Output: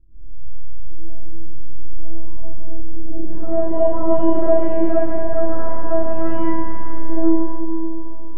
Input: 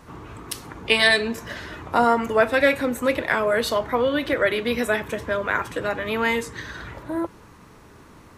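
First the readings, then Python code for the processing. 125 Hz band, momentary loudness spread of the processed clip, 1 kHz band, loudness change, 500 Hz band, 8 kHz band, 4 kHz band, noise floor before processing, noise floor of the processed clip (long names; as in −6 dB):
+7.5 dB, 21 LU, −3.5 dB, 0.0 dB, +1.0 dB, below −40 dB, below −30 dB, −48 dBFS, −15 dBFS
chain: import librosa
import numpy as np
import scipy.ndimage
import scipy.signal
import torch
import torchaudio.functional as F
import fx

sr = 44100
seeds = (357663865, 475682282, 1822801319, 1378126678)

y = fx.hpss(x, sr, part='percussive', gain_db=-16)
y = fx.bass_treble(y, sr, bass_db=10, treble_db=-9)
y = fx.robotise(y, sr, hz=329.0)
y = fx.filter_sweep_lowpass(y, sr, from_hz=100.0, to_hz=780.0, start_s=2.87, end_s=3.63, q=0.79)
y = fx.rev_freeverb(y, sr, rt60_s=2.9, hf_ratio=0.4, predelay_ms=5, drr_db=-9.0)
y = y * librosa.db_to_amplitude(-1.0)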